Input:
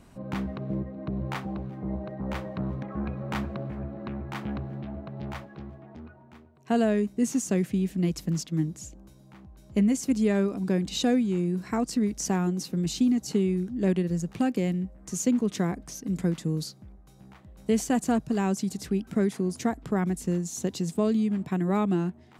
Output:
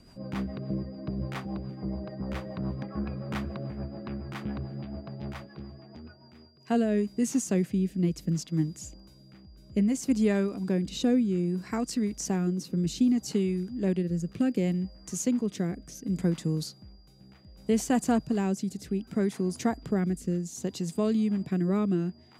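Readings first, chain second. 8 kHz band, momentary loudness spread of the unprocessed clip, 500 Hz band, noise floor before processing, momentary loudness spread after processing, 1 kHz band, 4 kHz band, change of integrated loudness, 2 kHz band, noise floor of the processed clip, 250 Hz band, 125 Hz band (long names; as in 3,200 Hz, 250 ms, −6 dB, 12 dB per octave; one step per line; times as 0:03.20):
−2.0 dB, 11 LU, −2.0 dB, −53 dBFS, 12 LU, −3.5 dB, −3.0 dB, −1.5 dB, −3.0 dB, −55 dBFS, −1.0 dB, −1.0 dB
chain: steady tone 4,800 Hz −58 dBFS
rotating-speaker cabinet horn 7 Hz, later 0.65 Hz, at 0:06.12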